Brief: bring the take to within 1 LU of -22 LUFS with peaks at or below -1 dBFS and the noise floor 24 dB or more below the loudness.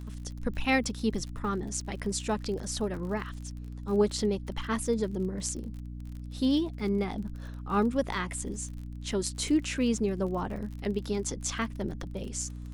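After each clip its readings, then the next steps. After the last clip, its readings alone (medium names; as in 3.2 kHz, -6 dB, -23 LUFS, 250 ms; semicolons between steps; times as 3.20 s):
tick rate 44 per s; hum 60 Hz; highest harmonic 300 Hz; hum level -37 dBFS; loudness -31.5 LUFS; peak level -13.0 dBFS; loudness target -22.0 LUFS
-> de-click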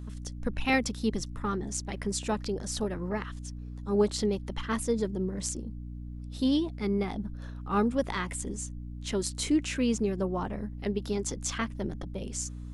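tick rate 0.16 per s; hum 60 Hz; highest harmonic 300 Hz; hum level -37 dBFS
-> hum notches 60/120/180/240/300 Hz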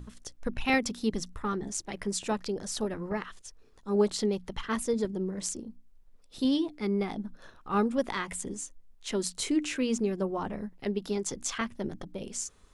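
hum not found; loudness -32.0 LUFS; peak level -13.5 dBFS; loudness target -22.0 LUFS
-> trim +10 dB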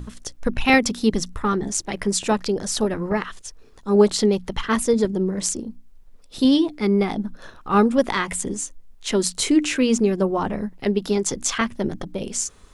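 loudness -22.0 LUFS; peak level -3.5 dBFS; noise floor -47 dBFS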